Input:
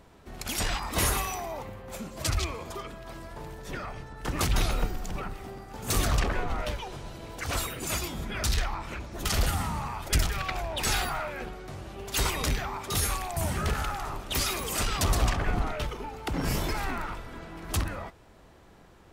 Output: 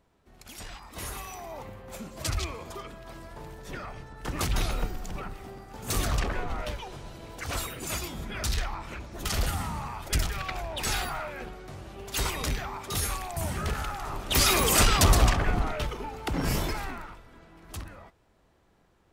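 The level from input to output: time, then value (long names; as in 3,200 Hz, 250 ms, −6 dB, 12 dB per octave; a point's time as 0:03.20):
0:00.97 −13 dB
0:01.65 −2 dB
0:13.99 −2 dB
0:14.62 +10 dB
0:15.57 +1 dB
0:16.61 +1 dB
0:17.20 −10.5 dB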